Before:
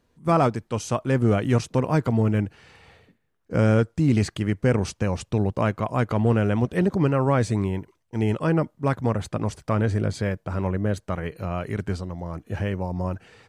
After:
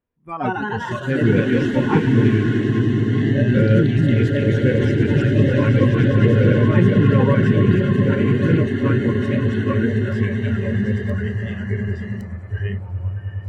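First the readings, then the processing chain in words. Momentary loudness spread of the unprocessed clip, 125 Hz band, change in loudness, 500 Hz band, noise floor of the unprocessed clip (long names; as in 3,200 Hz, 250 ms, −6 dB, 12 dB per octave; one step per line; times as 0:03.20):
9 LU, +7.5 dB, +6.5 dB, +4.5 dB, −70 dBFS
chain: in parallel at −2 dB: downward compressor, threshold −30 dBFS, peak gain reduction 14 dB
on the sum: Savitzky-Golay smoothing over 25 samples
echo that builds up and dies away 103 ms, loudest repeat 8, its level −10 dB
delay with pitch and tempo change per echo 197 ms, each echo +2 semitones, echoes 3
noise reduction from a noise print of the clip's start 21 dB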